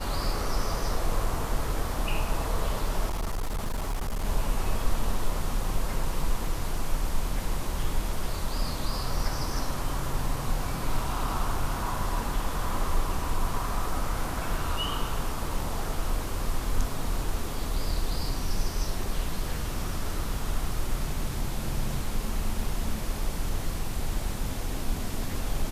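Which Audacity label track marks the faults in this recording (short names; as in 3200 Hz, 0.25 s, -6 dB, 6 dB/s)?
3.080000	4.250000	clipped -25.5 dBFS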